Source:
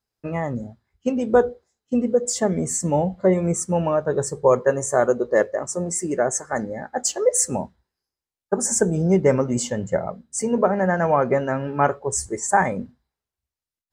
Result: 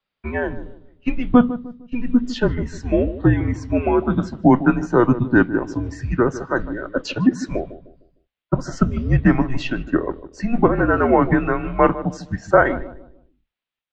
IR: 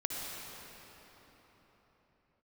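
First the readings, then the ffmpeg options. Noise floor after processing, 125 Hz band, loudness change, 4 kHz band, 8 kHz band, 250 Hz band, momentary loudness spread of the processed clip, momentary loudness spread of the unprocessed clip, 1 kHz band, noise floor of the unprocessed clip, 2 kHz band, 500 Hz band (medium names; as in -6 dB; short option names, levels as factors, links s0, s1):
-83 dBFS, +5.0 dB, +2.0 dB, +0.5 dB, under -20 dB, +6.5 dB, 12 LU, 9 LU, +1.0 dB, under -85 dBFS, +5.0 dB, -1.5 dB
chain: -filter_complex "[0:a]crystalizer=i=5.5:c=0,highpass=f=100:w=0.5412,highpass=f=100:w=1.3066,afreqshift=37,asplit=2[s0][s1];[s1]adelay=152,lowpass=f=910:p=1,volume=0.251,asplit=2[s2][s3];[s3]adelay=152,lowpass=f=910:p=1,volume=0.42,asplit=2[s4][s5];[s5]adelay=152,lowpass=f=910:p=1,volume=0.42,asplit=2[s6][s7];[s7]adelay=152,lowpass=f=910:p=1,volume=0.42[s8];[s2][s4][s6][s8]amix=inputs=4:normalize=0[s9];[s0][s9]amix=inputs=2:normalize=0,highpass=f=250:t=q:w=0.5412,highpass=f=250:t=q:w=1.307,lowpass=f=3600:t=q:w=0.5176,lowpass=f=3600:t=q:w=0.7071,lowpass=f=3600:t=q:w=1.932,afreqshift=-280,volume=1.33"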